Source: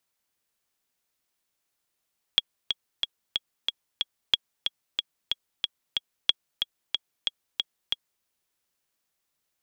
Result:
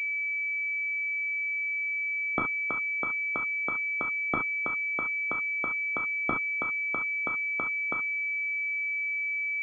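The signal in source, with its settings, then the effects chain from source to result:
metronome 184 bpm, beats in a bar 6, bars 3, 3320 Hz, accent 6.5 dB -5.5 dBFS
elliptic high-pass 150 Hz; non-linear reverb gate 90 ms flat, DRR 1.5 dB; pulse-width modulation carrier 2300 Hz

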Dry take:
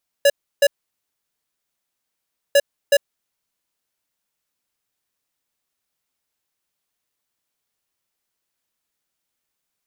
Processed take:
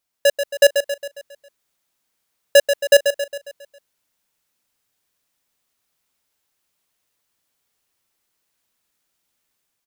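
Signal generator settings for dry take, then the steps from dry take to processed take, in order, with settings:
beep pattern square 566 Hz, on 0.05 s, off 0.32 s, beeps 2, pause 1.88 s, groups 2, -12.5 dBFS
AGC gain up to 5 dB; on a send: feedback echo 0.136 s, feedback 50%, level -8 dB

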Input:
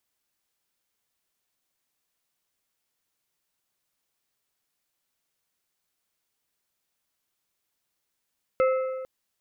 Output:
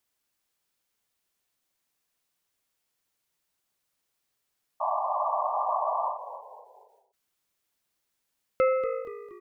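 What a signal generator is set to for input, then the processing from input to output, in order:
metal hit plate, length 0.45 s, lowest mode 521 Hz, modes 4, decay 1.64 s, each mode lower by 8 dB, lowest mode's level -17.5 dB
painted sound noise, 4.8–6.18, 590–1200 Hz -28 dBFS; on a send: frequency-shifting echo 0.236 s, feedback 43%, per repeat -54 Hz, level -12 dB; on the sum: ending taper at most 100 dB/s

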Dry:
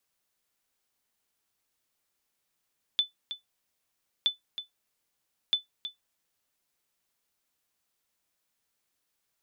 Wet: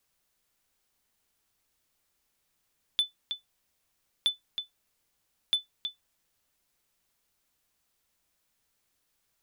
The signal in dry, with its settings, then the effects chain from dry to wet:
sonar ping 3500 Hz, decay 0.14 s, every 1.27 s, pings 3, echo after 0.32 s, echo -11.5 dB -16 dBFS
in parallel at -6.5 dB: wavefolder -29 dBFS; on the sum: low shelf 94 Hz +9.5 dB

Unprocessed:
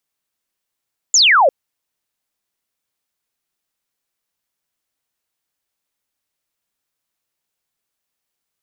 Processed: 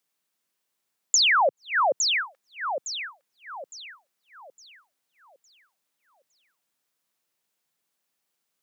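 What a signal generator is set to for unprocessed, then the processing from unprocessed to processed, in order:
laser zap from 7400 Hz, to 500 Hz, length 0.35 s sine, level -8 dB
HPF 130 Hz 24 dB/oct; echo with dull and thin repeats by turns 0.43 s, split 1600 Hz, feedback 58%, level -7 dB; compressor 6:1, threshold -19 dBFS

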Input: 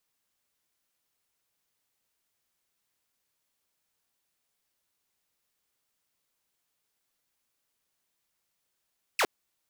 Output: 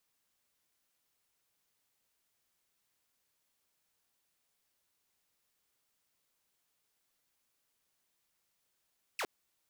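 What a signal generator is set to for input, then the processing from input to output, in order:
laser zap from 2900 Hz, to 310 Hz, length 0.06 s saw, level -19.5 dB
limiter -31 dBFS

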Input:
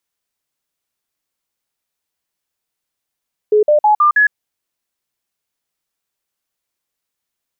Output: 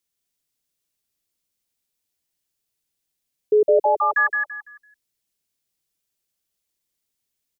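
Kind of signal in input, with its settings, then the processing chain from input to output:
stepped sine 423 Hz up, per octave 2, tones 5, 0.11 s, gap 0.05 s -7.5 dBFS
bell 1100 Hz -10 dB 2.2 oct; on a send: feedback echo 0.168 s, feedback 29%, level -4 dB

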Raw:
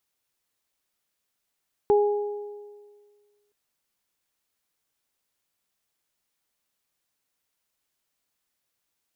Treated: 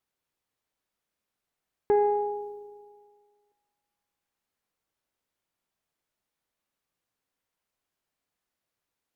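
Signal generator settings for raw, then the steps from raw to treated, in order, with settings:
additive tone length 1.62 s, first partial 413 Hz, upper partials -8 dB, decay 1.71 s, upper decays 1.33 s, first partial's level -15 dB
resonator 55 Hz, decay 1.9 s, harmonics all, mix 70%; sine folder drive 5 dB, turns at -16 dBFS; mismatched tape noise reduction decoder only

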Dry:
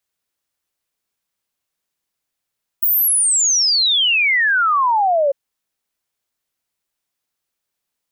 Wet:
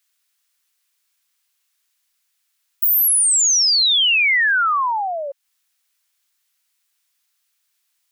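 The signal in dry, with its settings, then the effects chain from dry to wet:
log sweep 16000 Hz -> 540 Hz 2.50 s -12.5 dBFS
HPF 1100 Hz 12 dB/oct; mismatched tape noise reduction encoder only

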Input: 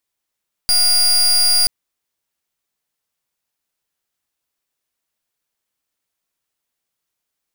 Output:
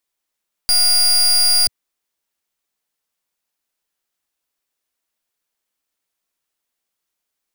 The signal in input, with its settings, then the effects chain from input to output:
pulse 4820 Hz, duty 31% -13.5 dBFS 0.98 s
bell 110 Hz -8.5 dB 0.95 oct

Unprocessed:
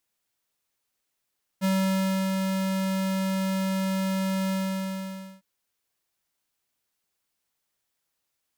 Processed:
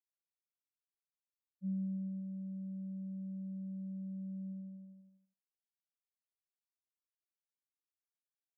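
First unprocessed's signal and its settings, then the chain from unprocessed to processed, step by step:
ADSR square 191 Hz, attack 35 ms, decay 0.647 s, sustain -3.5 dB, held 2.90 s, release 0.905 s -23 dBFS
delta modulation 32 kbps, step -47.5 dBFS; band-pass 340 Hz, Q 3; spectral expander 2.5:1

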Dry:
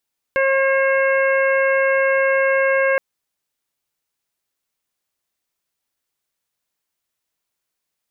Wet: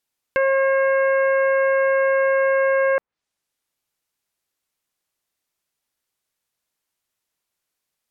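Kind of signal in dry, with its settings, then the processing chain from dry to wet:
steady additive tone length 2.62 s, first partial 539 Hz, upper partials -9.5/-4/-8/-15 dB, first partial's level -16 dB
treble ducked by the level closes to 1500 Hz, closed at -18.5 dBFS

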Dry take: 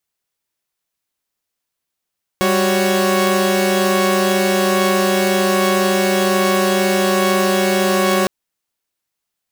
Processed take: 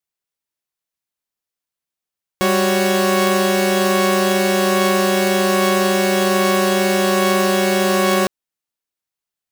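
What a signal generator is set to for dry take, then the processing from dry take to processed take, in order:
chord G3/F#4/C#5 saw, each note -15.5 dBFS 5.86 s
upward expander 1.5:1, over -30 dBFS

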